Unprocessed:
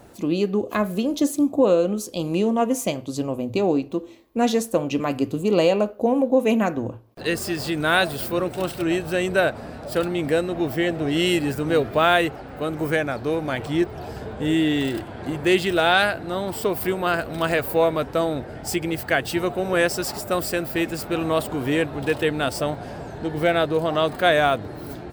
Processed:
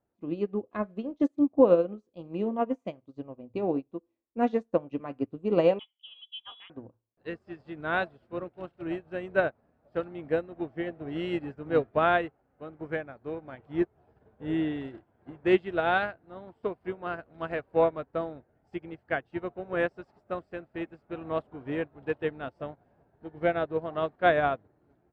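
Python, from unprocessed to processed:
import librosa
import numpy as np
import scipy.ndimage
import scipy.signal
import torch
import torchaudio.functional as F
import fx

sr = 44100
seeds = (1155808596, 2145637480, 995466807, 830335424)

y = fx.freq_invert(x, sr, carrier_hz=3600, at=(5.79, 6.7))
y = scipy.signal.sosfilt(scipy.signal.butter(2, 1900.0, 'lowpass', fs=sr, output='sos'), y)
y = fx.upward_expand(y, sr, threshold_db=-36.0, expansion=2.5)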